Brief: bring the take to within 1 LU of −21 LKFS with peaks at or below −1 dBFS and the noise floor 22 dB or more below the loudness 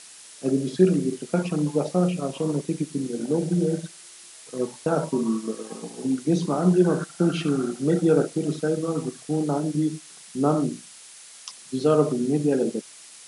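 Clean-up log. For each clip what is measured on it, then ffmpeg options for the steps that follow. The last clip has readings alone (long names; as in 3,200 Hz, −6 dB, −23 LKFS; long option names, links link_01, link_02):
background noise floor −46 dBFS; target noise floor −47 dBFS; integrated loudness −24.5 LKFS; sample peak −6.0 dBFS; target loudness −21.0 LKFS
→ -af "afftdn=noise_reduction=6:noise_floor=-46"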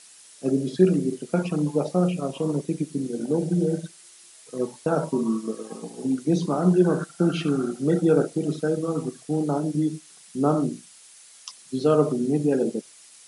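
background noise floor −50 dBFS; integrated loudness −24.5 LKFS; sample peak −6.5 dBFS; target loudness −21.0 LKFS
→ -af "volume=3.5dB"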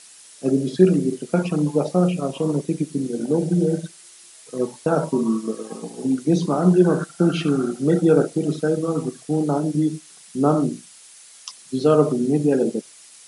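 integrated loudness −21.0 LKFS; sample peak −3.0 dBFS; background noise floor −47 dBFS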